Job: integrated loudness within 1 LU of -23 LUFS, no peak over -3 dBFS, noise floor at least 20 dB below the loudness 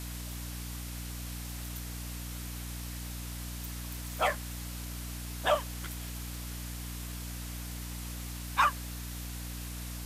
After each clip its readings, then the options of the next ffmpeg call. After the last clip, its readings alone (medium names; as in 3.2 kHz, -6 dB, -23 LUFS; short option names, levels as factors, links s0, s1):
hum 60 Hz; highest harmonic 300 Hz; hum level -38 dBFS; noise floor -40 dBFS; noise floor target -57 dBFS; loudness -36.5 LUFS; peak level -14.0 dBFS; loudness target -23.0 LUFS
-> -af "bandreject=f=60:t=h:w=4,bandreject=f=120:t=h:w=4,bandreject=f=180:t=h:w=4,bandreject=f=240:t=h:w=4,bandreject=f=300:t=h:w=4"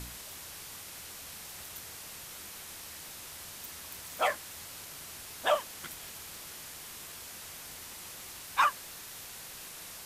hum not found; noise floor -46 dBFS; noise floor target -58 dBFS
-> -af "afftdn=nr=12:nf=-46"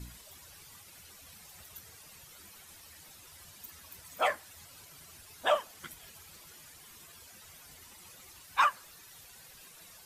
noise floor -54 dBFS; loudness -33.5 LUFS; peak level -14.5 dBFS; loudness target -23.0 LUFS
-> -af "volume=3.35"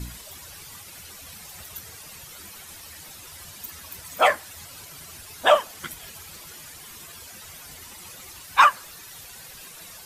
loudness -23.0 LUFS; peak level -4.0 dBFS; noise floor -44 dBFS